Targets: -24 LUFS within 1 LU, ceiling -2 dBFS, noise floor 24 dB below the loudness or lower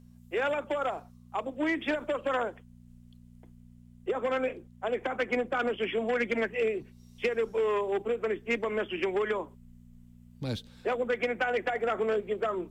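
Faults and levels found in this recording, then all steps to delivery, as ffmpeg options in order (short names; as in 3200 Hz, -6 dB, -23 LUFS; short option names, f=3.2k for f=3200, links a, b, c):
hum 60 Hz; harmonics up to 240 Hz; hum level -50 dBFS; loudness -31.0 LUFS; peak -19.0 dBFS; loudness target -24.0 LUFS
-> -af "bandreject=f=60:t=h:w=4,bandreject=f=120:t=h:w=4,bandreject=f=180:t=h:w=4,bandreject=f=240:t=h:w=4"
-af "volume=7dB"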